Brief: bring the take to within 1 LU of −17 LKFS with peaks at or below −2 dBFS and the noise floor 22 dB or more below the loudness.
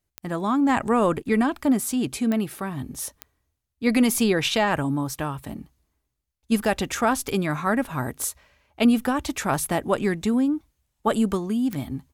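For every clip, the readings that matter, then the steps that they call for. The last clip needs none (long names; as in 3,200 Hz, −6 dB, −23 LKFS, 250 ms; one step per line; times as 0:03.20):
number of clicks 6; integrated loudness −24.0 LKFS; sample peak −10.0 dBFS; target loudness −17.0 LKFS
→ click removal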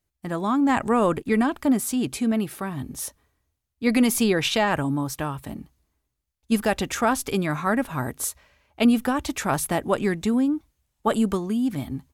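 number of clicks 0; integrated loudness −24.0 LKFS; sample peak −10.0 dBFS; target loudness −17.0 LKFS
→ level +7 dB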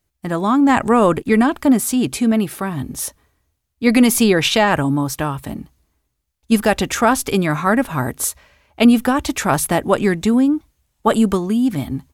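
integrated loudness −17.0 LKFS; sample peak −3.0 dBFS; background noise floor −73 dBFS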